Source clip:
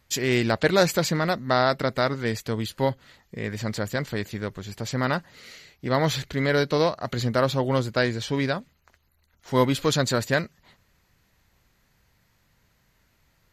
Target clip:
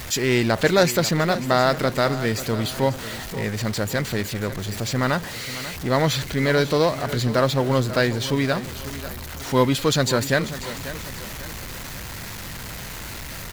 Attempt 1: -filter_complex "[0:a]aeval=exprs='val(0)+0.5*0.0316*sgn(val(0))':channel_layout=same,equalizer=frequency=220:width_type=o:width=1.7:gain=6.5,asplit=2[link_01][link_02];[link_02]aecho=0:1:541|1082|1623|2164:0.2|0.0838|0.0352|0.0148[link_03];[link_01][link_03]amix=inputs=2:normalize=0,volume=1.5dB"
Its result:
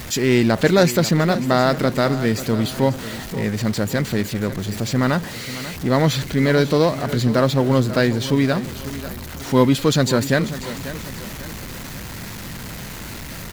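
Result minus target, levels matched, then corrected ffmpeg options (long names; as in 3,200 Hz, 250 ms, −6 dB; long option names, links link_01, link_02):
250 Hz band +2.5 dB
-filter_complex "[0:a]aeval=exprs='val(0)+0.5*0.0316*sgn(val(0))':channel_layout=same,asplit=2[link_01][link_02];[link_02]aecho=0:1:541|1082|1623|2164:0.2|0.0838|0.0352|0.0148[link_03];[link_01][link_03]amix=inputs=2:normalize=0,volume=1.5dB"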